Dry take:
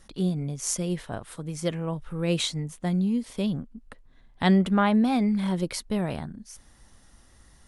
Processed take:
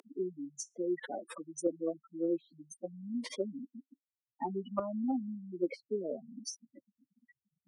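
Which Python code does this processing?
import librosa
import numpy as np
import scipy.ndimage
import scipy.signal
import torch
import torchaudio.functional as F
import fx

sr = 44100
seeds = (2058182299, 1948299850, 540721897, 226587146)

y = x + 0.5 * 10.0 ** (-26.5 / 20.0) * np.sign(x)
y = fx.spec_gate(y, sr, threshold_db=-10, keep='strong')
y = scipy.signal.sosfilt(scipy.signal.butter(6, 300.0, 'highpass', fs=sr, output='sos'), y)
y = fx.env_lowpass_down(y, sr, base_hz=380.0, full_db=-24.5)
y = fx.notch_cascade(y, sr, direction='rising', hz=0.63)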